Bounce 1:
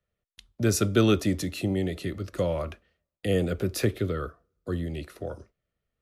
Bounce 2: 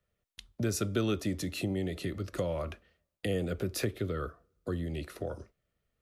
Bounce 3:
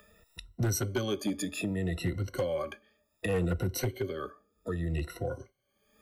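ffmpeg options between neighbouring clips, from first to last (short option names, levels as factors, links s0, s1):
-af "acompressor=threshold=0.0141:ratio=2,volume=1.26"
-af "afftfilt=real='re*pow(10,23/40*sin(2*PI*(2*log(max(b,1)*sr/1024/100)/log(2)-(0.66)*(pts-256)/sr)))':imag='im*pow(10,23/40*sin(2*PI*(2*log(max(b,1)*sr/1024/100)/log(2)-(0.66)*(pts-256)/sr)))':win_size=1024:overlap=0.75,volume=10,asoftclip=hard,volume=0.1,acompressor=mode=upward:threshold=0.00891:ratio=2.5,volume=0.668"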